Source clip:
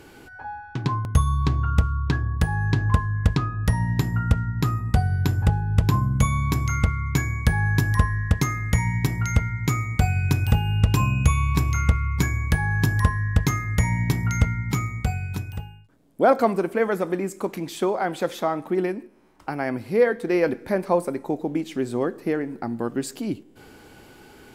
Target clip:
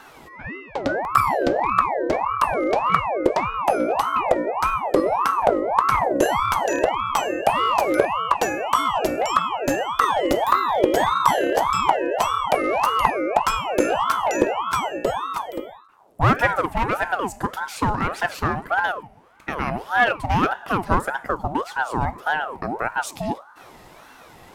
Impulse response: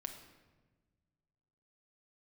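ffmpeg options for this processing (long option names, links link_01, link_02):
-filter_complex "[0:a]asplit=2[link_01][link_02];[1:a]atrim=start_sample=2205[link_03];[link_02][link_03]afir=irnorm=-1:irlink=0,volume=-15dB[link_04];[link_01][link_04]amix=inputs=2:normalize=0,aeval=exprs='clip(val(0),-1,0.133)':channel_layout=same,aeval=exprs='val(0)*sin(2*PI*820*n/s+820*0.5/1.7*sin(2*PI*1.7*n/s))':channel_layout=same,volume=3.5dB"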